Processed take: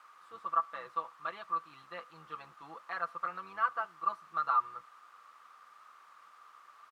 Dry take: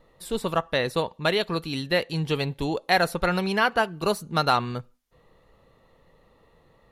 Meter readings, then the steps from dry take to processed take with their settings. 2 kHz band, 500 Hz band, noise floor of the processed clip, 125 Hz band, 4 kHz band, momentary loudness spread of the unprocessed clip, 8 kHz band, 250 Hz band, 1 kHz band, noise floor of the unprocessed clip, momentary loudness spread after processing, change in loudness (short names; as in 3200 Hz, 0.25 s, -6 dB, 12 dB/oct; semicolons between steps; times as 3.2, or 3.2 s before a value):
-15.5 dB, -23.0 dB, -60 dBFS, under -30 dB, -27.0 dB, 7 LU, under -25 dB, -30.5 dB, -6.5 dB, -61 dBFS, 16 LU, -11.0 dB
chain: octaver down 1 oct, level -2 dB; comb 6 ms, depth 86%; requantised 6-bit, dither triangular; band-pass 1200 Hz, Q 12